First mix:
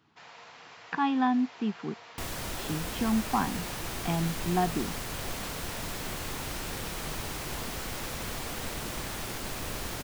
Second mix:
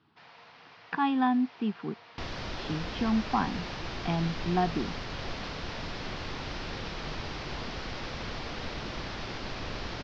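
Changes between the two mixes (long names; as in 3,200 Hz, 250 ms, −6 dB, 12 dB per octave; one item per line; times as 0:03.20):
first sound −3.5 dB
master: add Butterworth low-pass 5,400 Hz 48 dB per octave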